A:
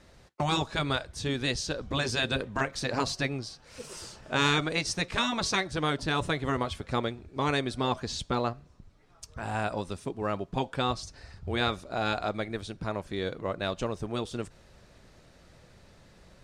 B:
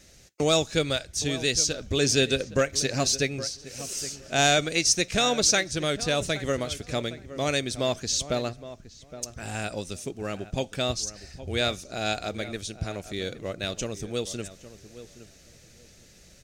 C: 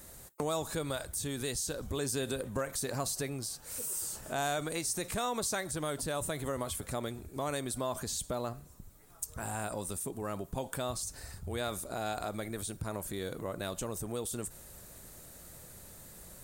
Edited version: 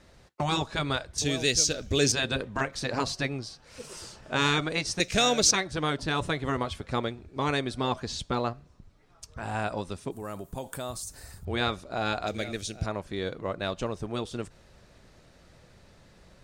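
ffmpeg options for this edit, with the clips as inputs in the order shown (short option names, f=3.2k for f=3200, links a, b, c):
-filter_complex "[1:a]asplit=3[a][b][c];[0:a]asplit=5[d][e][f][g][h];[d]atrim=end=1.182[i];[a]atrim=start=1.178:end=2.122[j];[e]atrim=start=2.118:end=5.002[k];[b]atrim=start=4.998:end=5.512[l];[f]atrim=start=5.508:end=10.112[m];[2:a]atrim=start=10.108:end=11.452[n];[g]atrim=start=11.448:end=12.272[o];[c]atrim=start=12.268:end=12.862[p];[h]atrim=start=12.858[q];[i][j]acrossfade=d=0.004:c1=hsin:c2=hsin[r];[r][k]acrossfade=d=0.004:c1=hsin:c2=hsin[s];[s][l]acrossfade=d=0.004:c1=hsin:c2=hsin[t];[t][m]acrossfade=d=0.004:c1=hsin:c2=hsin[u];[u][n]acrossfade=d=0.004:c1=hsin:c2=hsin[v];[v][o]acrossfade=d=0.004:c1=hsin:c2=hsin[w];[w][p]acrossfade=d=0.004:c1=hsin:c2=hsin[x];[x][q]acrossfade=d=0.004:c1=hsin:c2=hsin"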